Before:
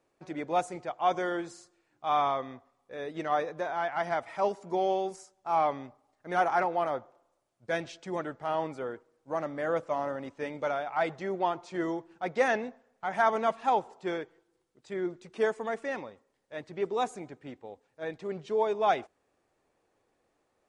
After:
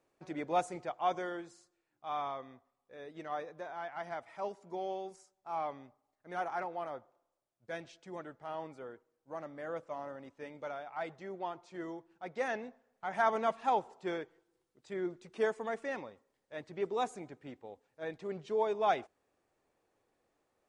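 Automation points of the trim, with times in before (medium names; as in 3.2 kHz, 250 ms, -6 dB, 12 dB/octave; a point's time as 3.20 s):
0.88 s -3 dB
1.51 s -10.5 dB
12.23 s -10.5 dB
13.29 s -4 dB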